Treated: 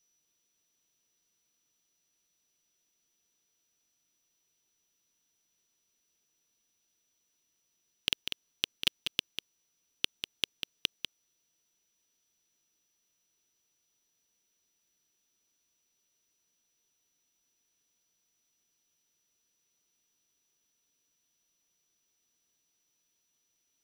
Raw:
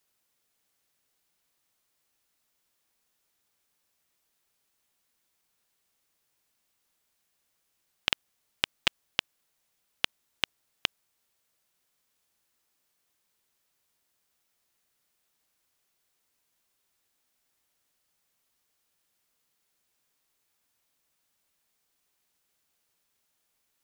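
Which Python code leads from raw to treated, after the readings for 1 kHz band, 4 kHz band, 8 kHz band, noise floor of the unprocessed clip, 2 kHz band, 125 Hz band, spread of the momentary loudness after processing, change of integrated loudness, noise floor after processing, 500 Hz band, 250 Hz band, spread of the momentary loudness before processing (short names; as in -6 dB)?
-12.5 dB, -1.0 dB, 0.0 dB, -77 dBFS, -5.5 dB, -4.0 dB, 13 LU, -2.5 dB, -78 dBFS, -6.0 dB, -2.0 dB, 5 LU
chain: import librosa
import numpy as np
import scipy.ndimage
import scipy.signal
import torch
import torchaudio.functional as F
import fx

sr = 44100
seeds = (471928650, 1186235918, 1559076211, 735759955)

y = scipy.signal.medfilt(x, 5)
y = fx.low_shelf(y, sr, hz=170.0, db=-7.0)
y = y + 10.0 ** (-73.0 / 20.0) * np.sin(2.0 * np.pi * 5900.0 * np.arange(len(y)) / sr)
y = fx.band_shelf(y, sr, hz=1100.0, db=-12.0, octaves=2.3)
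y = fx.quant_companded(y, sr, bits=8)
y = y + 10.0 ** (-7.5 / 20.0) * np.pad(y, (int(195 * sr / 1000.0), 0))[:len(y)]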